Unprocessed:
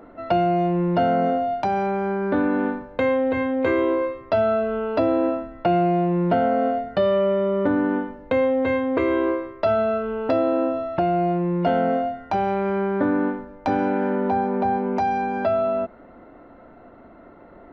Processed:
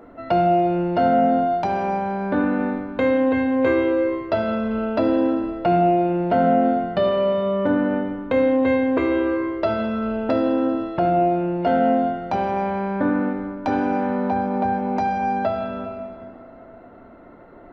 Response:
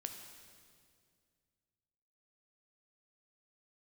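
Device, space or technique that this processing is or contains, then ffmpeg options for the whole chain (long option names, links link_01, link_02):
stairwell: -filter_complex "[1:a]atrim=start_sample=2205[link_01];[0:a][link_01]afir=irnorm=-1:irlink=0,volume=3.5dB"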